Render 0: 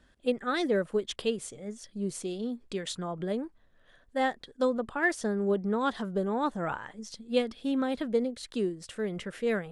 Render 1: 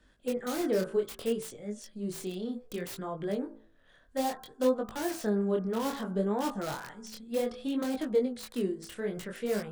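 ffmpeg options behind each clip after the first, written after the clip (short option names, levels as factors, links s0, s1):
-filter_complex "[0:a]bandreject=f=55.25:t=h:w=4,bandreject=f=110.5:t=h:w=4,bandreject=f=165.75:t=h:w=4,bandreject=f=221:t=h:w=4,bandreject=f=276.25:t=h:w=4,bandreject=f=331.5:t=h:w=4,bandreject=f=386.75:t=h:w=4,bandreject=f=442:t=h:w=4,bandreject=f=497.25:t=h:w=4,bandreject=f=552.5:t=h:w=4,bandreject=f=607.75:t=h:w=4,bandreject=f=663:t=h:w=4,bandreject=f=718.25:t=h:w=4,bandreject=f=773.5:t=h:w=4,bandreject=f=828.75:t=h:w=4,bandreject=f=884:t=h:w=4,bandreject=f=939.25:t=h:w=4,bandreject=f=994.5:t=h:w=4,bandreject=f=1049.75:t=h:w=4,bandreject=f=1105:t=h:w=4,bandreject=f=1160.25:t=h:w=4,bandreject=f=1215.5:t=h:w=4,bandreject=f=1270.75:t=h:w=4,bandreject=f=1326:t=h:w=4,bandreject=f=1381.25:t=h:w=4,bandreject=f=1436.5:t=h:w=4,bandreject=f=1491.75:t=h:w=4,bandreject=f=1547:t=h:w=4,bandreject=f=1602.25:t=h:w=4,bandreject=f=1657.5:t=h:w=4,acrossover=split=350|1000[s0][s1][s2];[s2]aeval=exprs='(mod(59.6*val(0)+1,2)-1)/59.6':c=same[s3];[s0][s1][s3]amix=inputs=3:normalize=0,flanger=delay=19:depth=8:speed=0.62,volume=1.33"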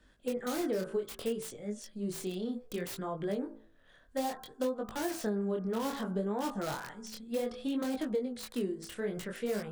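-af "acompressor=threshold=0.0355:ratio=6"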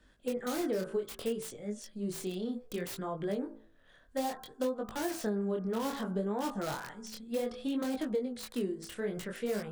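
-af anull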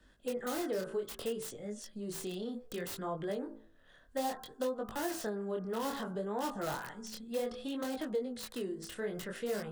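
-filter_complex "[0:a]acrossover=split=410|2000[s0][s1][s2];[s0]alimiter=level_in=4.73:limit=0.0631:level=0:latency=1,volume=0.211[s3];[s2]aeval=exprs='(mod(56.2*val(0)+1,2)-1)/56.2':c=same[s4];[s3][s1][s4]amix=inputs=3:normalize=0,bandreject=f=2300:w=12"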